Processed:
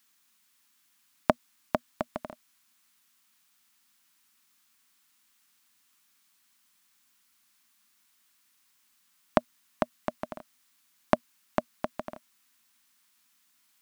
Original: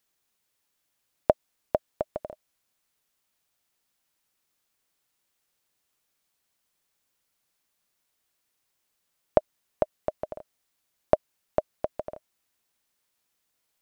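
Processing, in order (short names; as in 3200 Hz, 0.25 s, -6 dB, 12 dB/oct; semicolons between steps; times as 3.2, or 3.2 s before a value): EQ curve 120 Hz 0 dB, 240 Hz +13 dB, 490 Hz -7 dB, 1100 Hz +12 dB; gain -3 dB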